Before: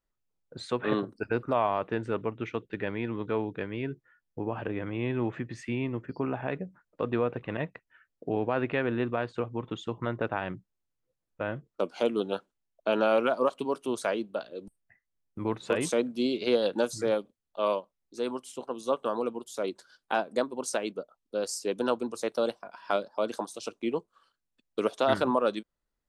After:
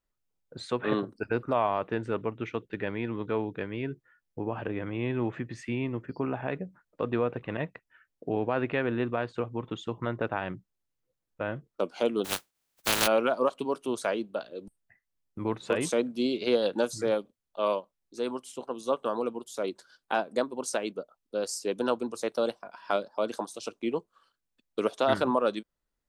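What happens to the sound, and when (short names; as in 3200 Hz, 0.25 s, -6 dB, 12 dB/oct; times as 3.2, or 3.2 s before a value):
12.24–13.06 spectral contrast lowered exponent 0.19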